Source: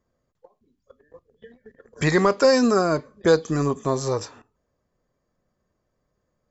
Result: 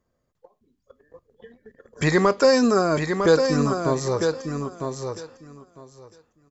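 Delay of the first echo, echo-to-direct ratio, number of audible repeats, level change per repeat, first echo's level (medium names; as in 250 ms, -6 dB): 953 ms, -6.0 dB, 2, -16.0 dB, -6.0 dB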